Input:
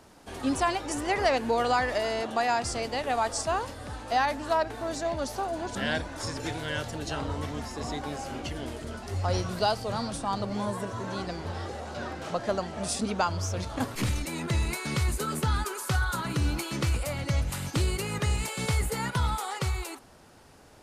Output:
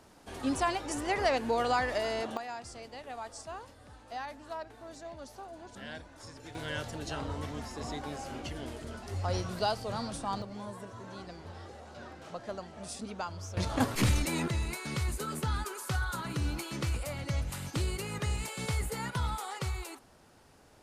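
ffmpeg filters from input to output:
ffmpeg -i in.wav -af "asetnsamples=nb_out_samples=441:pad=0,asendcmd='2.37 volume volume -14.5dB;6.55 volume volume -4.5dB;10.42 volume volume -11dB;13.57 volume volume 2dB;14.48 volume volume -5.5dB',volume=-3.5dB" out.wav

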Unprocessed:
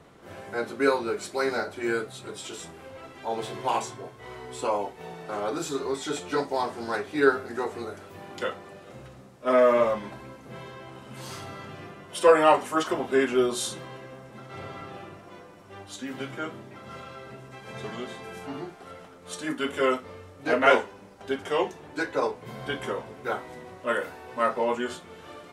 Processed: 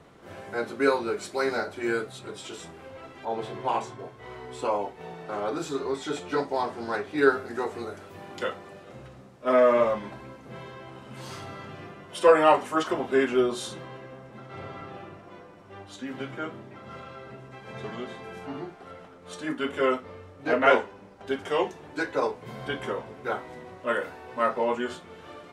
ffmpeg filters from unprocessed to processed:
ffmpeg -i in.wav -af "asetnsamples=nb_out_samples=441:pad=0,asendcmd='2.19 lowpass f 5200;3.25 lowpass f 2200;3.99 lowpass f 4000;7.18 lowpass f 10000;8.82 lowpass f 5500;13.41 lowpass f 3200;21.27 lowpass f 8200;22.68 lowpass f 4900',lowpass=frequency=9100:poles=1" out.wav

